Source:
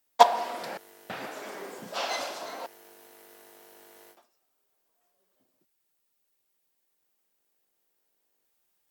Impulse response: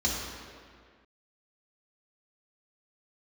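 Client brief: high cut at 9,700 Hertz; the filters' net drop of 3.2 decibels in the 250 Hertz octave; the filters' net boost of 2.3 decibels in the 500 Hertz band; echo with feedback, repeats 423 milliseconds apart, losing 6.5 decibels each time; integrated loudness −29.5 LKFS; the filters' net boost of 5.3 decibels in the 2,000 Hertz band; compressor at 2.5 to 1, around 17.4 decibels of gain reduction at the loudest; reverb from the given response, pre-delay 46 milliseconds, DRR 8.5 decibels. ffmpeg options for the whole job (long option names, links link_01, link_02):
-filter_complex "[0:a]lowpass=9700,equalizer=frequency=250:width_type=o:gain=-6,equalizer=frequency=500:width_type=o:gain=4,equalizer=frequency=2000:width_type=o:gain=6.5,acompressor=threshold=-35dB:ratio=2.5,aecho=1:1:423|846|1269|1692|2115|2538:0.473|0.222|0.105|0.0491|0.0231|0.0109,asplit=2[link_01][link_02];[1:a]atrim=start_sample=2205,adelay=46[link_03];[link_02][link_03]afir=irnorm=-1:irlink=0,volume=-18dB[link_04];[link_01][link_04]amix=inputs=2:normalize=0,volume=8dB"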